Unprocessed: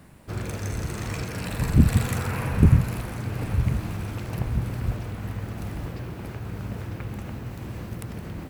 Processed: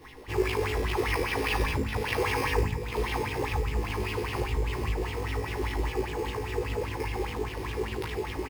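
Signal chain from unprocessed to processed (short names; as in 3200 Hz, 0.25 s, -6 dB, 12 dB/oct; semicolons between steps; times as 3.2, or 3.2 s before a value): compressor 4:1, threshold -26 dBFS, peak gain reduction 13.5 dB; fixed phaser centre 940 Hz, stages 8; doubler 14 ms -5.5 dB; on a send: flutter echo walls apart 3.2 m, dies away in 0.44 s; on the sum: careless resampling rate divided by 6×, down none, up hold; LFO bell 5 Hz 380–3200 Hz +15 dB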